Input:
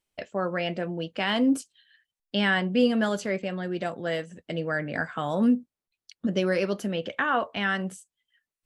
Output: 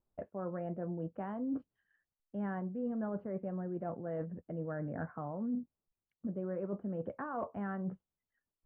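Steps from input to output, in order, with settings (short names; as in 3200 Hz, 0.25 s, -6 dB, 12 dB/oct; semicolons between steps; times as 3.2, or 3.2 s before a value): LPF 1200 Hz 24 dB/oct; low shelf 210 Hz +7.5 dB; reverse; compressor 6:1, threshold -35 dBFS, peak gain reduction 19 dB; reverse; gain -1 dB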